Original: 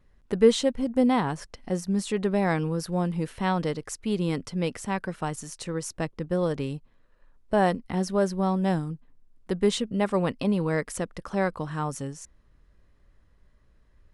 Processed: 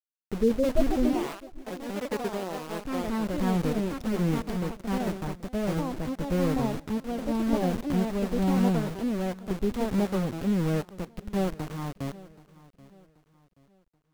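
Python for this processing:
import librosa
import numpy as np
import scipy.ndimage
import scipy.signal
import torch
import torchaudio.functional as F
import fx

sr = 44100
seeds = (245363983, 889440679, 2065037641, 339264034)

y = fx.highpass(x, sr, hz=320.0, slope=12, at=(1.13, 3.36))
y = fx.env_lowpass_down(y, sr, base_hz=730.0, full_db=-19.0)
y = fx.tilt_eq(y, sr, slope=-4.0)
y = np.where(np.abs(y) >= 10.0 ** (-22.5 / 20.0), y, 0.0)
y = y * (1.0 - 0.42 / 2.0 + 0.42 / 2.0 * np.cos(2.0 * np.pi * 1.4 * (np.arange(len(y)) / sr)))
y = fx.echo_feedback(y, sr, ms=780, feedback_pct=38, wet_db=-20)
y = fx.echo_pitch(y, sr, ms=231, semitones=3, count=2, db_per_echo=-3.0)
y = y * 10.0 ** (-7.5 / 20.0)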